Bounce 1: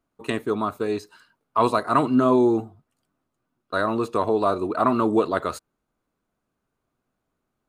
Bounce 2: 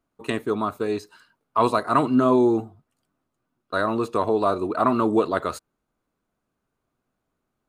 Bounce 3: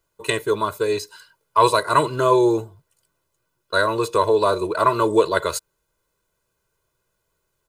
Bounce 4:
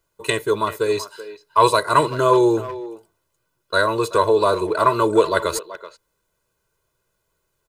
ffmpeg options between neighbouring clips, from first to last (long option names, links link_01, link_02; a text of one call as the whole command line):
ffmpeg -i in.wav -af anull out.wav
ffmpeg -i in.wav -af "highshelf=frequency=3000:gain=11.5,aecho=1:1:2:0.93" out.wav
ffmpeg -i in.wav -filter_complex "[0:a]asplit=2[link_01][link_02];[link_02]adelay=380,highpass=300,lowpass=3400,asoftclip=type=hard:threshold=-12dB,volume=-14dB[link_03];[link_01][link_03]amix=inputs=2:normalize=0,volume=1dB" out.wav